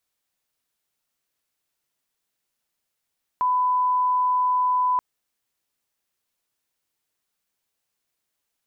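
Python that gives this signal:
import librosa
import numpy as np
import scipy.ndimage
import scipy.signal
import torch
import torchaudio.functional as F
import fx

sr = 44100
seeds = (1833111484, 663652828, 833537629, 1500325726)

y = fx.lineup_tone(sr, length_s=1.58, level_db=-18.0)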